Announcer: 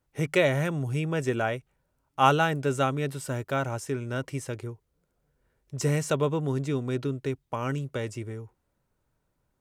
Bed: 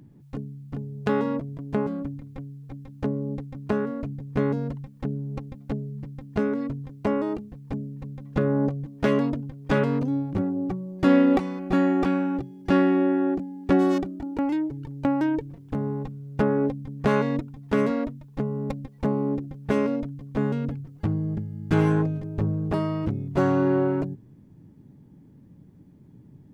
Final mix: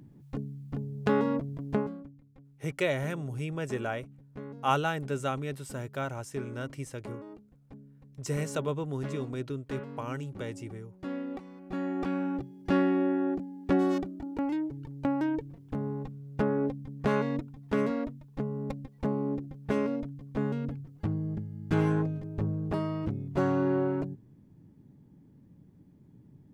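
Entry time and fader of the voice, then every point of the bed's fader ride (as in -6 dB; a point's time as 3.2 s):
2.45 s, -6.0 dB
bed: 1.74 s -2 dB
2.13 s -18.5 dB
11.39 s -18.5 dB
12.27 s -5.5 dB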